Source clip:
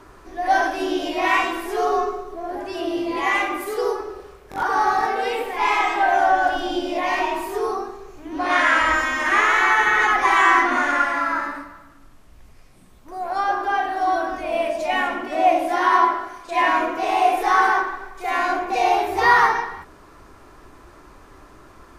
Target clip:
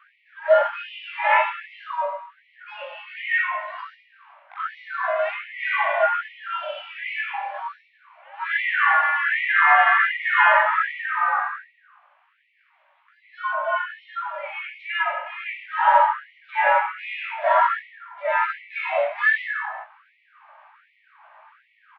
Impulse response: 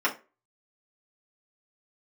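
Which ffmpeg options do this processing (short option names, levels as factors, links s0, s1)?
-filter_complex "[0:a]highpass=f=520:t=q:w=0.5412,highpass=f=520:t=q:w=1.307,lowpass=f=3000:t=q:w=0.5176,lowpass=f=3000:t=q:w=0.7071,lowpass=f=3000:t=q:w=1.932,afreqshift=-140,asplit=2[s0][s1];[s1]adelay=19,volume=0.631[s2];[s0][s2]amix=inputs=2:normalize=0,afftfilt=real='re*gte(b*sr/1024,520*pow(1900/520,0.5+0.5*sin(2*PI*1.3*pts/sr)))':imag='im*gte(b*sr/1024,520*pow(1900/520,0.5+0.5*sin(2*PI*1.3*pts/sr)))':win_size=1024:overlap=0.75"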